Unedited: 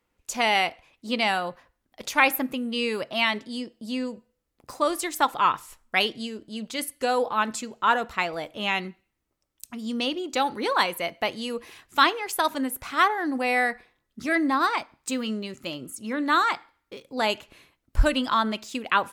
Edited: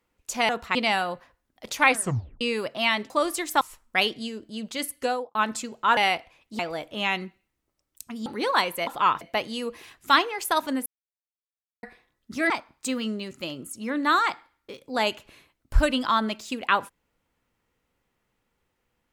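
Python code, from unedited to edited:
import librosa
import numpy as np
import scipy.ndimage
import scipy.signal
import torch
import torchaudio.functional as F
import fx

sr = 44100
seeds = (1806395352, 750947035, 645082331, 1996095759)

y = fx.studio_fade_out(x, sr, start_s=7.01, length_s=0.33)
y = fx.edit(y, sr, fx.swap(start_s=0.49, length_s=0.62, other_s=7.96, other_length_s=0.26),
    fx.tape_stop(start_s=2.24, length_s=0.53),
    fx.cut(start_s=3.46, length_s=1.29),
    fx.move(start_s=5.26, length_s=0.34, to_s=11.09),
    fx.cut(start_s=9.89, length_s=0.59),
    fx.silence(start_s=12.74, length_s=0.97),
    fx.cut(start_s=14.38, length_s=0.35), tone=tone)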